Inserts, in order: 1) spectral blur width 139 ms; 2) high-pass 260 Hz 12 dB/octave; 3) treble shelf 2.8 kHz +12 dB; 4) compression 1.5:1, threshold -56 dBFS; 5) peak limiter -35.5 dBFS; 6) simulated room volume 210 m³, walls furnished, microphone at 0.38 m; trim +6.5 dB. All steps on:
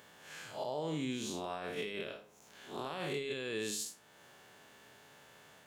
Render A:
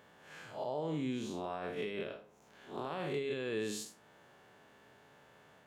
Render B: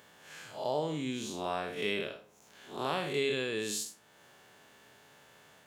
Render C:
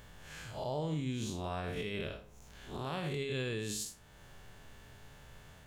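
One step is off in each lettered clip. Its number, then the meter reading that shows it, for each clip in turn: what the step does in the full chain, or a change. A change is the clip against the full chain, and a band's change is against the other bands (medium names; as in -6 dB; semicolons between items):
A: 3, 8 kHz band -7.0 dB; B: 5, mean gain reduction 2.0 dB; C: 2, 125 Hz band +9.5 dB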